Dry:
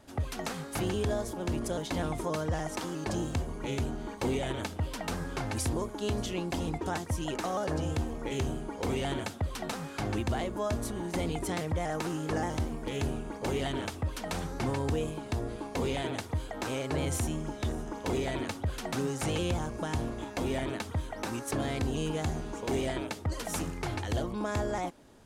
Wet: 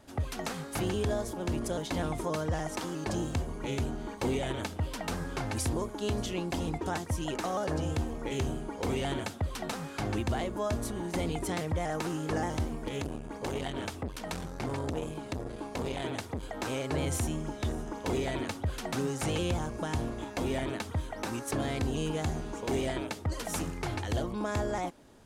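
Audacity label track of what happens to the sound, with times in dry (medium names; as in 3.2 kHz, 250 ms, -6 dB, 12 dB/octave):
12.880000	16.430000	transformer saturation saturates under 360 Hz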